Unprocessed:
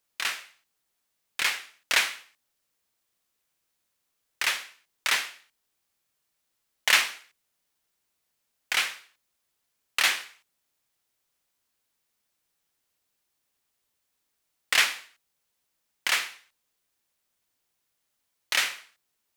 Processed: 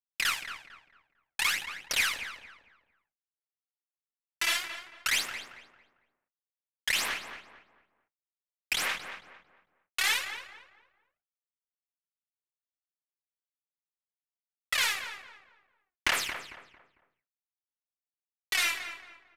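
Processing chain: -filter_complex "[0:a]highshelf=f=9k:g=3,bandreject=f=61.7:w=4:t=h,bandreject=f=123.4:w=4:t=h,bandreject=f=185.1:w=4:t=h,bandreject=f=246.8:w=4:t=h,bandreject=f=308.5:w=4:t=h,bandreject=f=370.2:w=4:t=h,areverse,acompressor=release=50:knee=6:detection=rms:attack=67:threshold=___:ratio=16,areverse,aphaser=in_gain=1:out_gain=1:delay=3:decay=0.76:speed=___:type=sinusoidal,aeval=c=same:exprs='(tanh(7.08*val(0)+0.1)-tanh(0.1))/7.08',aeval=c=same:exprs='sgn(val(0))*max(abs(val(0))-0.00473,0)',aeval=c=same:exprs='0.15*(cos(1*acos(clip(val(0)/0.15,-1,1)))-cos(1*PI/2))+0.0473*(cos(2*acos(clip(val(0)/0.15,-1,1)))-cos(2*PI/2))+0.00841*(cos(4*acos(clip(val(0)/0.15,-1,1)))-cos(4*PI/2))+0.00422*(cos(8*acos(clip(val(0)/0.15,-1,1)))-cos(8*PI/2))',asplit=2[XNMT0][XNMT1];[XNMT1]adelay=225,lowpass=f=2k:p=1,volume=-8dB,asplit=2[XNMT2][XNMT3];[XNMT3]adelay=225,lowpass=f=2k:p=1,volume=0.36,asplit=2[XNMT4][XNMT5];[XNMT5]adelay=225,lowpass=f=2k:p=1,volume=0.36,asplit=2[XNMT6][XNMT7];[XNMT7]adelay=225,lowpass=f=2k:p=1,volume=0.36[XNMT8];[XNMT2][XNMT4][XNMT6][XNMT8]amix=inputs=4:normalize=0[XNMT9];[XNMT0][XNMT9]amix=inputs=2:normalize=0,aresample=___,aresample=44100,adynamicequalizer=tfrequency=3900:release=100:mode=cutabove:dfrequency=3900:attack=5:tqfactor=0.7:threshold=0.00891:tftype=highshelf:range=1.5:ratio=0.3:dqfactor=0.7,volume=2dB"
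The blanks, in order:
-32dB, 0.56, 32000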